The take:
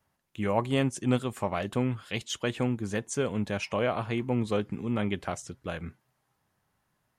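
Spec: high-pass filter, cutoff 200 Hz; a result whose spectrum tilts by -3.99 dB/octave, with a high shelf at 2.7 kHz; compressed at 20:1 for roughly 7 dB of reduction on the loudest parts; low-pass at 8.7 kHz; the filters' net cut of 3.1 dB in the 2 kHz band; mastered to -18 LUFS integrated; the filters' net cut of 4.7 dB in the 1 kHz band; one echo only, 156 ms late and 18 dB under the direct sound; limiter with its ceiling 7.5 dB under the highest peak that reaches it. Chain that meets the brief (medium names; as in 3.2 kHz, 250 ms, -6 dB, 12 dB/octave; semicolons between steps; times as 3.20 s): high-pass 200 Hz; low-pass 8.7 kHz; peaking EQ 1 kHz -6 dB; peaking EQ 2 kHz -5.5 dB; treble shelf 2.7 kHz +6.5 dB; compression 20:1, threshold -29 dBFS; peak limiter -24.5 dBFS; delay 156 ms -18 dB; trim +19 dB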